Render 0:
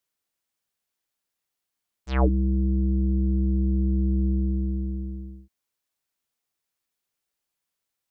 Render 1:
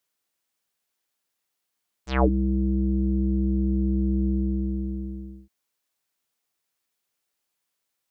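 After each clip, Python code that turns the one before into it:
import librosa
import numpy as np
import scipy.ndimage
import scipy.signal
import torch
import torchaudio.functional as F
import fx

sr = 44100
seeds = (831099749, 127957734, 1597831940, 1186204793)

y = fx.low_shelf(x, sr, hz=110.0, db=-8.0)
y = y * 10.0 ** (3.5 / 20.0)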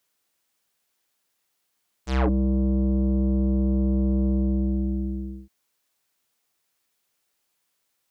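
y = 10.0 ** (-23.0 / 20.0) * np.tanh(x / 10.0 ** (-23.0 / 20.0))
y = y * 10.0 ** (5.5 / 20.0)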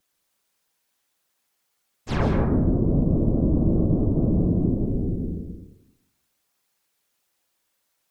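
y = fx.vibrato(x, sr, rate_hz=4.8, depth_cents=98.0)
y = fx.whisperise(y, sr, seeds[0])
y = fx.rev_plate(y, sr, seeds[1], rt60_s=0.89, hf_ratio=0.4, predelay_ms=120, drr_db=3.0)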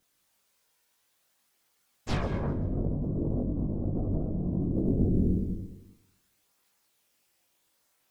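y = fx.over_compress(x, sr, threshold_db=-26.0, ratio=-1.0)
y = fx.chorus_voices(y, sr, voices=2, hz=0.3, base_ms=21, depth_ms=1.1, mix_pct=45)
y = fx.echo_feedback(y, sr, ms=132, feedback_pct=46, wet_db=-19.0)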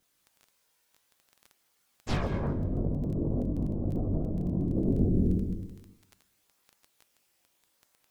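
y = fx.dmg_crackle(x, sr, seeds[2], per_s=11.0, level_db=-38.0)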